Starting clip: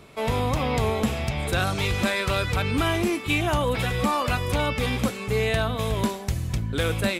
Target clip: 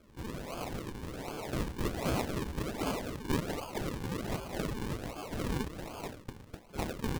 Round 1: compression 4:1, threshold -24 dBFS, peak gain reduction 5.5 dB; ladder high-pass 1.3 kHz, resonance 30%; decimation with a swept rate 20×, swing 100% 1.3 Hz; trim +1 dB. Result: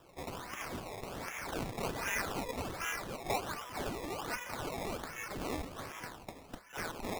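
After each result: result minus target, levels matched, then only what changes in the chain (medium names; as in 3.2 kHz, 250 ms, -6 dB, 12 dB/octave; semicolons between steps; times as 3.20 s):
decimation with a swept rate: distortion -11 dB; compression: peak gain reduction +5.5 dB
change: decimation with a swept rate 46×, swing 100% 1.3 Hz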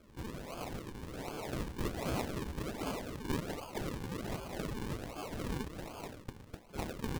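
compression: peak gain reduction +5.5 dB
remove: compression 4:1, threshold -24 dBFS, peak gain reduction 5.5 dB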